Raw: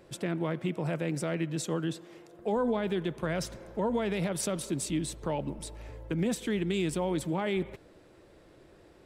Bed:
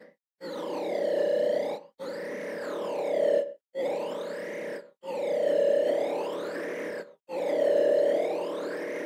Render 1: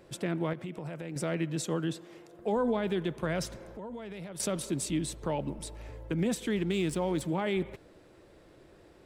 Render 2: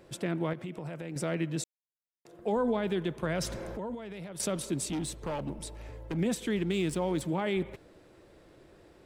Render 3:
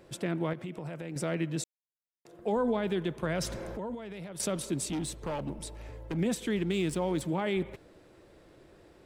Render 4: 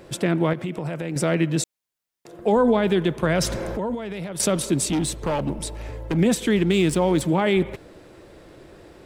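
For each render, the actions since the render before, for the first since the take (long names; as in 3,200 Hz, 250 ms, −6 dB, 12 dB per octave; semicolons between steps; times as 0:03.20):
0:00.53–0:01.16: downward compressor, threshold −35 dBFS; 0:03.71–0:04.40: downward compressor 3 to 1, threshold −42 dBFS; 0:06.56–0:07.22: slack as between gear wheels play −45.5 dBFS
0:01.64–0:02.25: silence; 0:03.39–0:03.95: envelope flattener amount 50%; 0:04.88–0:06.17: hard clipping −29.5 dBFS
no processing that can be heard
level +10.5 dB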